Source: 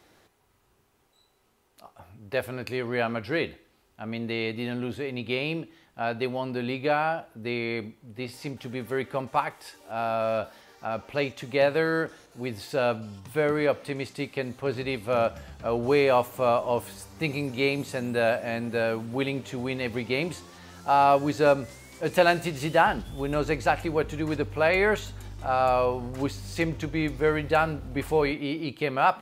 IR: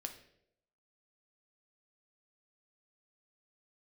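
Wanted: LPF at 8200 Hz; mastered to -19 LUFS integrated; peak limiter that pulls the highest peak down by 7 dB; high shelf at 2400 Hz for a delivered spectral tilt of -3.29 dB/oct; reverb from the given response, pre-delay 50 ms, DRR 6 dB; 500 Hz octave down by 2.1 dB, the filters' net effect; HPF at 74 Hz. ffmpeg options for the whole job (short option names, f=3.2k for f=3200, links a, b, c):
-filter_complex "[0:a]highpass=74,lowpass=8.2k,equalizer=f=500:t=o:g=-3,highshelf=f=2.4k:g=6.5,alimiter=limit=-12.5dB:level=0:latency=1,asplit=2[a][b];[1:a]atrim=start_sample=2205,adelay=50[c];[b][c]afir=irnorm=-1:irlink=0,volume=-3.5dB[d];[a][d]amix=inputs=2:normalize=0,volume=8.5dB"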